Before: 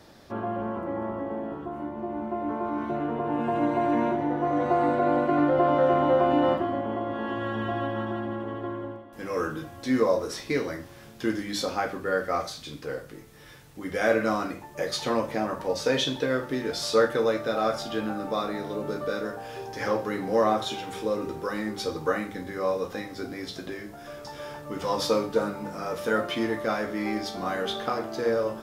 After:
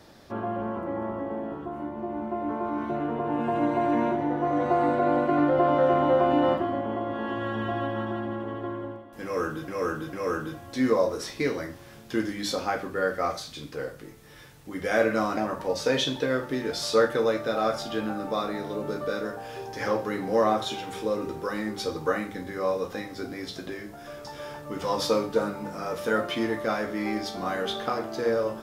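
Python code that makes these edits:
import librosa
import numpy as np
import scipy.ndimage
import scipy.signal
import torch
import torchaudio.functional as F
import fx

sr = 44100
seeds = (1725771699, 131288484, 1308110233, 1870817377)

y = fx.edit(x, sr, fx.repeat(start_s=9.23, length_s=0.45, count=3),
    fx.cut(start_s=14.47, length_s=0.9), tone=tone)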